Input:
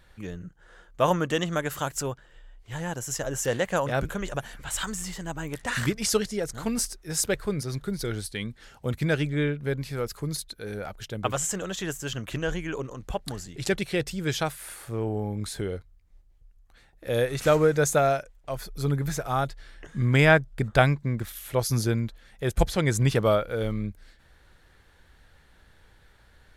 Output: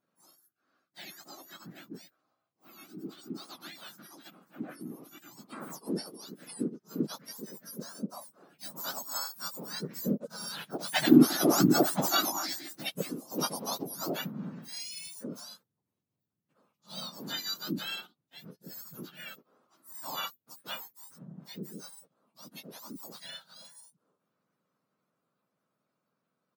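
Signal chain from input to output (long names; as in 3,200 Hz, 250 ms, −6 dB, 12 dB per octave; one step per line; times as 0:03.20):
frequency axis turned over on the octave scale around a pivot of 1,500 Hz
source passing by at 0:11.71, 9 m/s, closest 4.1 metres
pitch-shifted copies added −3 semitones −2 dB
level +7.5 dB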